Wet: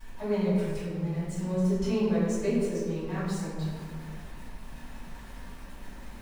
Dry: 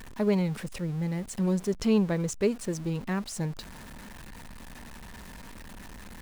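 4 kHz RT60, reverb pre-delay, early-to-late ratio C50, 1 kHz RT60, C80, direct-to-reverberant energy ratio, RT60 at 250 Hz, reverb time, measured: 0.95 s, 3 ms, -2.0 dB, 1.7 s, 0.5 dB, -16.5 dB, 2.1 s, 1.9 s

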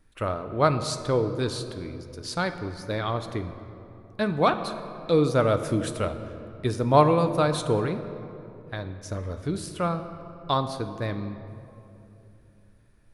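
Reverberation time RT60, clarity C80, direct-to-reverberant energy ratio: 3.0 s, 11.0 dB, 8.0 dB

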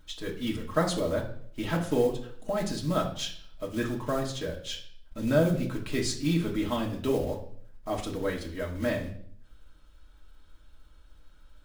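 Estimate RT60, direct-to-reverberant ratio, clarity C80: 0.60 s, -1.5 dB, 13.0 dB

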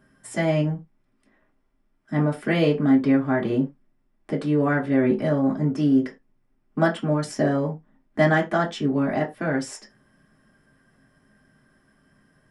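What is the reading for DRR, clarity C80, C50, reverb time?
-4.5 dB, 22.5 dB, 14.5 dB, no single decay rate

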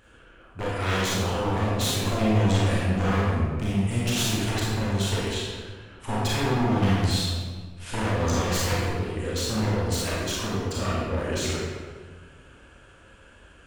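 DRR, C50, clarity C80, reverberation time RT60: -6.5 dB, -3.0 dB, 0.5 dB, 1.6 s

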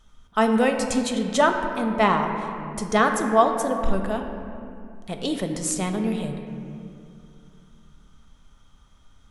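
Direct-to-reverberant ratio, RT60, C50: 4.0 dB, 2.4 s, 5.5 dB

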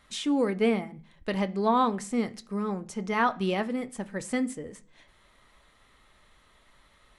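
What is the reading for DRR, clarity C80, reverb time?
9.5 dB, 26.0 dB, 0.45 s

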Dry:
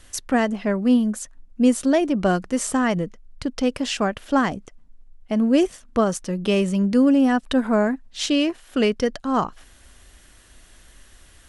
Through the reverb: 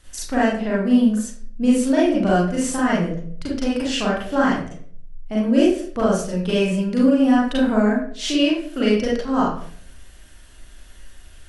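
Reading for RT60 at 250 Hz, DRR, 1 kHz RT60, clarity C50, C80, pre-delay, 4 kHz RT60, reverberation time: 0.70 s, -6.5 dB, 0.45 s, 1.5 dB, 6.5 dB, 36 ms, 0.45 s, 0.55 s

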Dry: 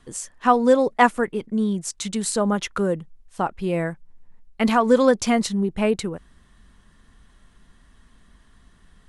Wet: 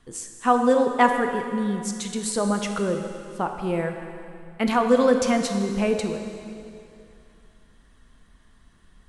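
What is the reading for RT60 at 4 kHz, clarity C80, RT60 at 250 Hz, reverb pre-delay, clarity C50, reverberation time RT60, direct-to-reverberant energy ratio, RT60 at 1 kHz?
2.4 s, 6.5 dB, 2.5 s, 7 ms, 5.5 dB, 2.6 s, 4.5 dB, 2.6 s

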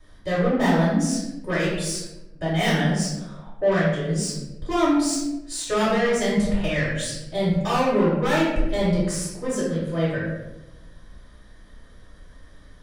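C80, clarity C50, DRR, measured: 4.0 dB, 0.5 dB, -9.5 dB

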